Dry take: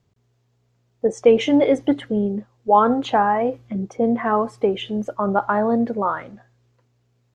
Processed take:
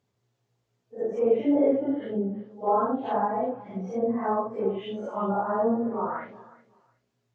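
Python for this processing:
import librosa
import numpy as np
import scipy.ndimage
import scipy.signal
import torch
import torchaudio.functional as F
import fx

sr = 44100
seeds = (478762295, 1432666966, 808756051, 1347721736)

y = fx.phase_scramble(x, sr, seeds[0], window_ms=200)
y = fx.highpass(y, sr, hz=200.0, slope=6)
y = fx.env_lowpass_down(y, sr, base_hz=1000.0, full_db=-18.5)
y = fx.echo_feedback(y, sr, ms=367, feedback_pct=20, wet_db=-20)
y = fx.end_taper(y, sr, db_per_s=420.0)
y = y * librosa.db_to_amplitude(-5.0)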